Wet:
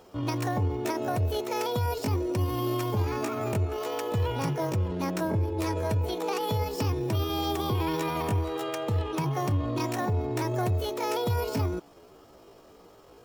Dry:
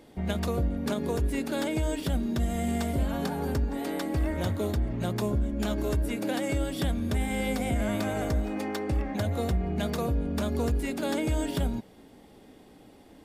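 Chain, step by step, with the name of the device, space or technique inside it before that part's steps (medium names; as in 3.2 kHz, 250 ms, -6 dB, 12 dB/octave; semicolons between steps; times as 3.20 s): 5.69–6.47 s: low-pass 9 kHz 12 dB/octave; chipmunk voice (pitch shift +7.5 st)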